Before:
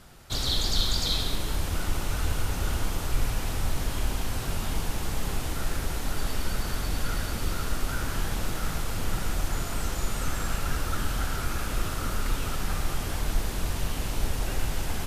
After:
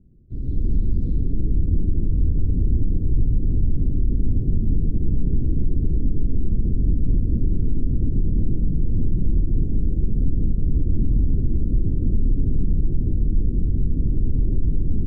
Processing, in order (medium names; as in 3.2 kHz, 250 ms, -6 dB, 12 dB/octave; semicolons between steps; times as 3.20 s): level rider gain up to 14.5 dB; inverse Chebyshev low-pass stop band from 850 Hz, stop band 50 dB; peak limiter -10.5 dBFS, peak gain reduction 7.5 dB